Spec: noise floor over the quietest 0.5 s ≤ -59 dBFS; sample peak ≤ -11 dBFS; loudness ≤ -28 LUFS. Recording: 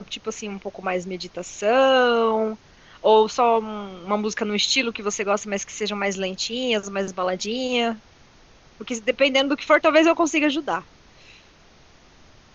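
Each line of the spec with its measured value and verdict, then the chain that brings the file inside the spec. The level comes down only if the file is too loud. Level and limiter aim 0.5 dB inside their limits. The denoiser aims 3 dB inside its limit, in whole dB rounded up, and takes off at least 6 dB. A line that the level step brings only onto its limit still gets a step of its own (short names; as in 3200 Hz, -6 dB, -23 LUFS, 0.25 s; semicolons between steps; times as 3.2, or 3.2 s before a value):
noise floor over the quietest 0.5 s -52 dBFS: fail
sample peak -3.5 dBFS: fail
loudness -22.0 LUFS: fail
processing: denoiser 6 dB, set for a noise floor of -52 dBFS; gain -6.5 dB; limiter -11.5 dBFS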